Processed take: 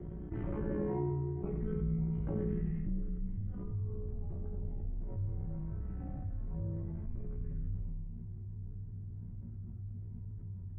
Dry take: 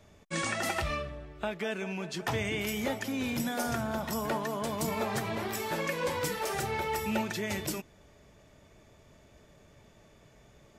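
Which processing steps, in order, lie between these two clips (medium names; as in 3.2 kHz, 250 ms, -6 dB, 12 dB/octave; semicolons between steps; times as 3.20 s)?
hum notches 50/100/150/200 Hz; chord resonator C3 fifth, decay 0.63 s; AM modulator 59 Hz, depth 35%; low-pass sweep 470 Hz -> 160 Hz, 2.58–3.21 s; ring modulator 110 Hz; thinning echo 98 ms, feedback 33%, high-pass 320 Hz, level -4.5 dB; mistuned SSB -340 Hz 160–3300 Hz; level flattener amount 70%; trim +14.5 dB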